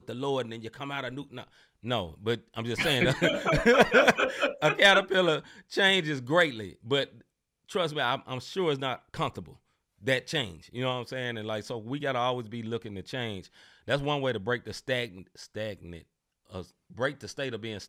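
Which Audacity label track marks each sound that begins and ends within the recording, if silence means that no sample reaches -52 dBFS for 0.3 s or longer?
7.690000	9.570000	sound
10.010000	16.030000	sound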